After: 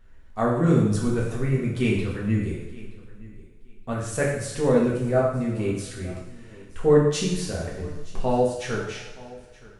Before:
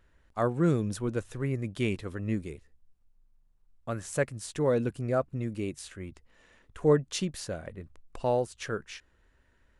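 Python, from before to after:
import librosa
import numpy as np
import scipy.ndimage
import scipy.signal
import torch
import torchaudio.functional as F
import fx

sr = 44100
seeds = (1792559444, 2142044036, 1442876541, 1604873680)

p1 = fx.low_shelf(x, sr, hz=71.0, db=11.5)
p2 = p1 + fx.echo_feedback(p1, sr, ms=922, feedback_pct=19, wet_db=-21, dry=0)
y = fx.rev_double_slope(p2, sr, seeds[0], early_s=0.77, late_s=2.5, knee_db=-18, drr_db=-5.0)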